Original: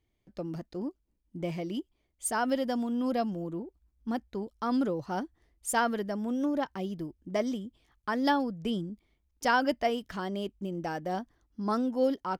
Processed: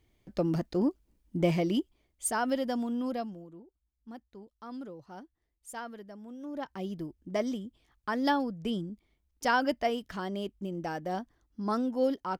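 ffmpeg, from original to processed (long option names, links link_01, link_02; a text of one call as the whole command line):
ffmpeg -i in.wav -af "volume=20.5dB,afade=type=out:start_time=1.44:duration=0.95:silence=0.354813,afade=type=out:start_time=2.9:duration=0.57:silence=0.237137,afade=type=in:start_time=6.43:duration=0.46:silence=0.237137" out.wav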